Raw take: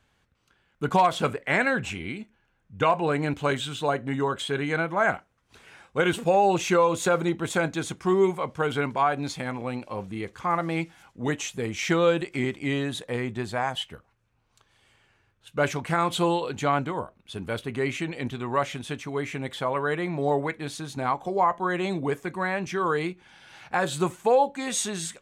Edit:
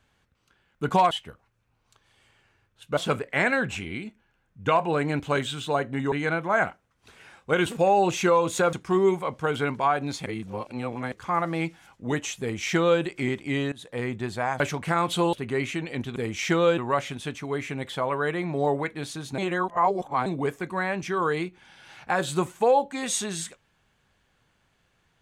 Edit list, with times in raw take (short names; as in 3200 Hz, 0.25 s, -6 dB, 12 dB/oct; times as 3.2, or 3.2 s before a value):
4.26–4.59 cut
7.2–7.89 cut
9.42–10.28 reverse
11.56–12.18 copy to 18.42
12.88–13.2 fade in, from -20 dB
13.76–15.62 move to 1.11
16.35–17.59 cut
21.02–21.9 reverse